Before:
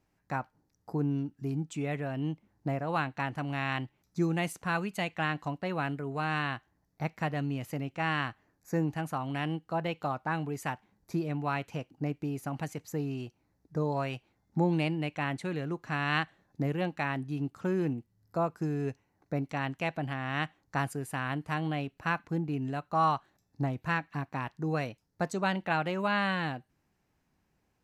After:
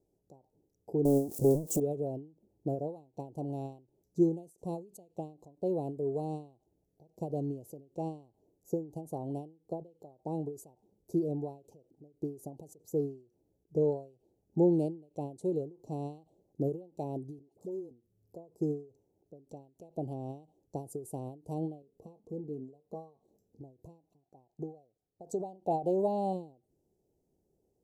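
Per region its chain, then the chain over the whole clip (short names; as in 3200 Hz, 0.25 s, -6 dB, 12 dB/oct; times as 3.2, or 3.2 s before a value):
1.05–1.8 switching spikes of -39 dBFS + bell 3600 Hz -10 dB 0.35 oct + sample leveller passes 5
17.39–17.91 low shelf 330 Hz -11.5 dB + dispersion highs, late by 63 ms, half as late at 680 Hz + compressor 10:1, threshold -39 dBFS
21.82–23.61 doubler 20 ms -12 dB + compressor 1.5:1, threshold -57 dBFS + small resonant body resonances 220/460/1100 Hz, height 12 dB, ringing for 95 ms
24.23–26.33 gate -58 dBFS, range -10 dB + bell 750 Hz +12 dB 0.32 oct
whole clip: Chebyshev band-stop 320–7800 Hz, order 2; band shelf 590 Hz +15.5 dB; ending taper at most 150 dB/s; gain -3 dB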